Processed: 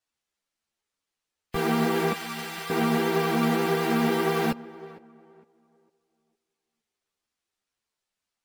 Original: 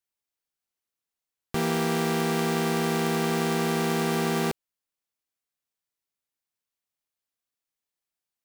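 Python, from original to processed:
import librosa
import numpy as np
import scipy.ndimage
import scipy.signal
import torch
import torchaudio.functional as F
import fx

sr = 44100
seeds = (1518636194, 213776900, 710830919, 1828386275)

y = fx.spec_gate(x, sr, threshold_db=-25, keep='strong')
y = fx.tone_stack(y, sr, knobs='10-0-10', at=(2.12, 2.7))
y = fx.sample_hold(y, sr, seeds[0], rate_hz=16000.0, jitter_pct=0)
y = fx.vibrato(y, sr, rate_hz=9.8, depth_cents=20.0)
y = fx.echo_tape(y, sr, ms=457, feedback_pct=32, wet_db=-15.5, lp_hz=1500.0, drive_db=20.0, wow_cents=17)
y = fx.ensemble(y, sr)
y = y * librosa.db_to_amplitude(5.0)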